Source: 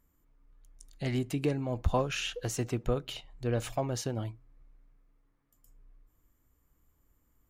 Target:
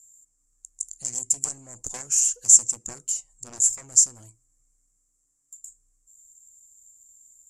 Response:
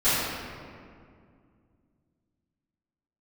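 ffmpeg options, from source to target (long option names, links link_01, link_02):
-af "aeval=exprs='0.2*(cos(1*acos(clip(val(0)/0.2,-1,1)))-cos(1*PI/2))+0.0708*(cos(7*acos(clip(val(0)/0.2,-1,1)))-cos(7*PI/2))':channel_layout=same,aexciter=amount=14.5:drive=8.9:freq=5700,lowpass=frequency=7400:width_type=q:width=11,volume=-15.5dB"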